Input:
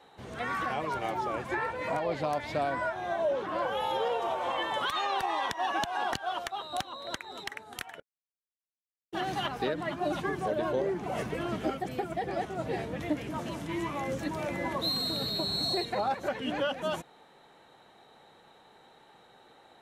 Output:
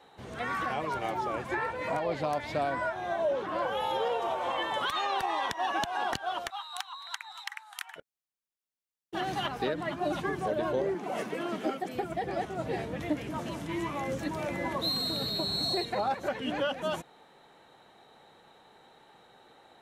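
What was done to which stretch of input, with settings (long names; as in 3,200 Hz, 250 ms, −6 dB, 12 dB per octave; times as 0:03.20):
0:06.50–0:07.96: Butterworth high-pass 800 Hz 72 dB per octave
0:10.94–0:11.95: high-pass filter 190 Hz 24 dB per octave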